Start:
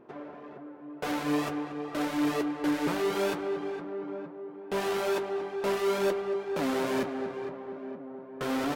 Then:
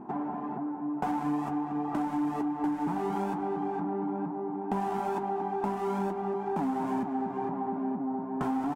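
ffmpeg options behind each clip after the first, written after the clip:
-af "firequalizer=gain_entry='entry(130,0);entry(200,10);entry(540,-14);entry(790,11);entry(1200,-3);entry(2100,-10);entry(4000,-16);entry(7800,-7);entry(11000,-9)':delay=0.05:min_phase=1,acompressor=threshold=0.0141:ratio=6,highshelf=f=11000:g=-5,volume=2.66"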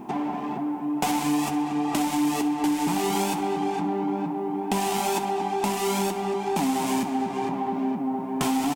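-af "aexciter=amount=8.5:drive=3.1:freq=2200,aecho=1:1:64|128|192|256|320:0.178|0.0925|0.0481|0.025|0.013,volume=1.78"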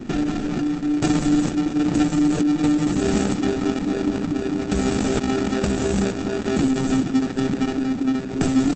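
-filter_complex "[0:a]acrossover=split=110|440|6100[s0][s1][s2][s3];[s2]acrusher=samples=42:mix=1:aa=0.000001[s4];[s0][s1][s4][s3]amix=inputs=4:normalize=0,volume=2.11" -ar 48000 -c:a libopus -b:a 10k

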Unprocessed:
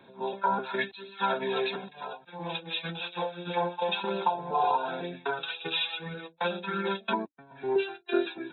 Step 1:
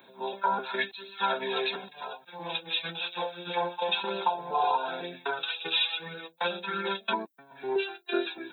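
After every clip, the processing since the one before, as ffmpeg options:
-af "aemphasis=mode=production:type=bsi"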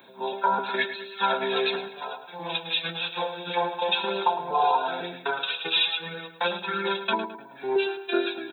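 -filter_complex "[0:a]asplit=2[s0][s1];[s1]adelay=107,lowpass=f=3100:p=1,volume=0.316,asplit=2[s2][s3];[s3]adelay=107,lowpass=f=3100:p=1,volume=0.42,asplit=2[s4][s5];[s5]adelay=107,lowpass=f=3100:p=1,volume=0.42,asplit=2[s6][s7];[s7]adelay=107,lowpass=f=3100:p=1,volume=0.42[s8];[s0][s2][s4][s6][s8]amix=inputs=5:normalize=0,volume=1.5"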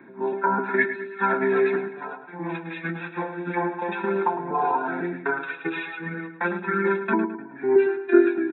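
-af "firequalizer=gain_entry='entry(130,0);entry(320,8);entry(500,-11);entry(2000,2);entry(3000,-29)':delay=0.05:min_phase=1,volume=2.11"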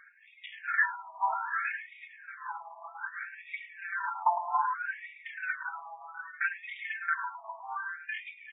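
-af "aresample=8000,asoftclip=type=tanh:threshold=0.178,aresample=44100,aecho=1:1:360|720|1080:0.237|0.0617|0.016,afftfilt=real='re*between(b*sr/1024,870*pow(2700/870,0.5+0.5*sin(2*PI*0.63*pts/sr))/1.41,870*pow(2700/870,0.5+0.5*sin(2*PI*0.63*pts/sr))*1.41)':imag='im*between(b*sr/1024,870*pow(2700/870,0.5+0.5*sin(2*PI*0.63*pts/sr))/1.41,870*pow(2700/870,0.5+0.5*sin(2*PI*0.63*pts/sr))*1.41)':win_size=1024:overlap=0.75"

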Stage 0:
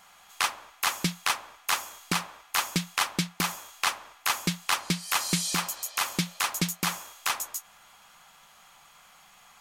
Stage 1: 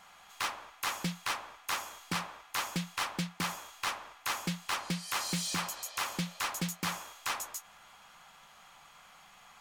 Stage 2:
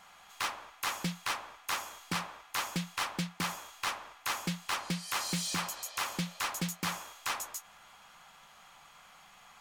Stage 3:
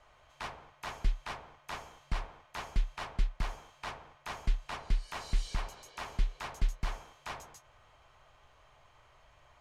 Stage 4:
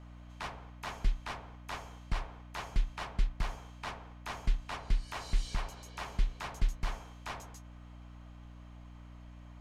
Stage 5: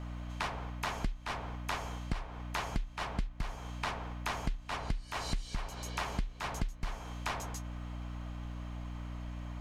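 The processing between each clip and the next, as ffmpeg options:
-af "highshelf=f=6200:g=-8,asoftclip=type=tanh:threshold=0.0398"
-af anull
-af "afreqshift=-140,aemphasis=mode=reproduction:type=bsi,volume=0.501"
-af "aeval=exprs='val(0)+0.00355*(sin(2*PI*60*n/s)+sin(2*PI*2*60*n/s)/2+sin(2*PI*3*60*n/s)/3+sin(2*PI*4*60*n/s)/4+sin(2*PI*5*60*n/s)/5)':c=same"
-af "acompressor=threshold=0.00891:ratio=6,volume=2.82"

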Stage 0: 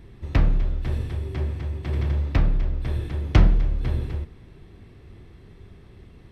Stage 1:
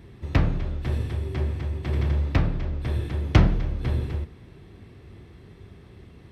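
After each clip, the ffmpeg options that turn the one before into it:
-af "highpass=59,volume=1.19"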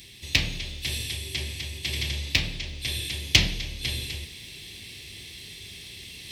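-af "aexciter=amount=12.4:drive=9.1:freq=2200,areverse,acompressor=mode=upward:threshold=0.0562:ratio=2.5,areverse,volume=0.335"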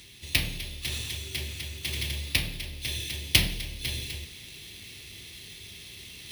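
-af "acrusher=samples=3:mix=1:aa=0.000001,volume=0.75"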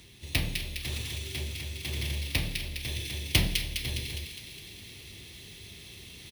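-filter_complex "[0:a]acrossover=split=1300[s0][s1];[s0]acontrast=80[s2];[s1]aecho=1:1:205|410|615|820|1025|1230|1435|1640:0.631|0.372|0.22|0.13|0.0765|0.0451|0.0266|0.0157[s3];[s2][s3]amix=inputs=2:normalize=0,volume=0.531"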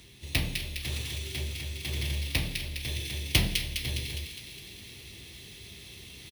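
-filter_complex "[0:a]asplit=2[s0][s1];[s1]adelay=15,volume=0.224[s2];[s0][s2]amix=inputs=2:normalize=0"

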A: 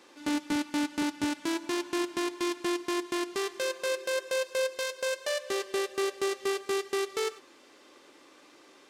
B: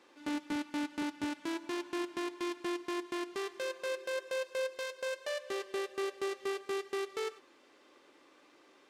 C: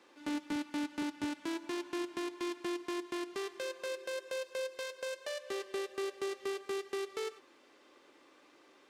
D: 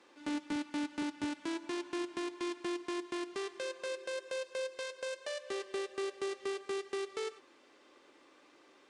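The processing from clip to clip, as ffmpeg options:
-af "bass=f=250:g=-2,treble=f=4000:g=-6,volume=0.531"
-filter_complex "[0:a]acrossover=split=450|3000[s0][s1][s2];[s1]acompressor=threshold=0.00891:ratio=6[s3];[s0][s3][s2]amix=inputs=3:normalize=0"
-af "aresample=22050,aresample=44100"

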